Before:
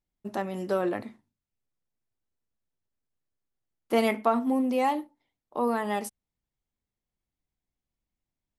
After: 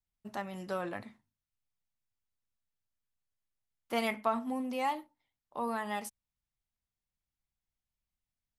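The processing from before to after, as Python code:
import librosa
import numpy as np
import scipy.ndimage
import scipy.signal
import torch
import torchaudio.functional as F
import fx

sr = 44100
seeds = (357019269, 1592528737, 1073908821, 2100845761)

y = fx.high_shelf(x, sr, hz=9200.0, db=-3.5)
y = fx.vibrato(y, sr, rate_hz=0.85, depth_cents=37.0)
y = fx.peak_eq(y, sr, hz=360.0, db=-10.0, octaves=1.6)
y = y * 10.0 ** (-3.0 / 20.0)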